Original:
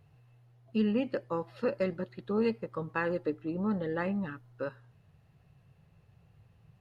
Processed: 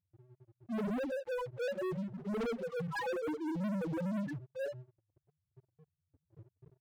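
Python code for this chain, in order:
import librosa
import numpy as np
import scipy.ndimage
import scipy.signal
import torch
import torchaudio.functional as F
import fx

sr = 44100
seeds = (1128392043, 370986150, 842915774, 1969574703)

y = fx.phase_scramble(x, sr, seeds[0], window_ms=100)
y = fx.spec_topn(y, sr, count=1)
y = fx.leveller(y, sr, passes=5)
y = y * 10.0 ** (-6.0 / 20.0)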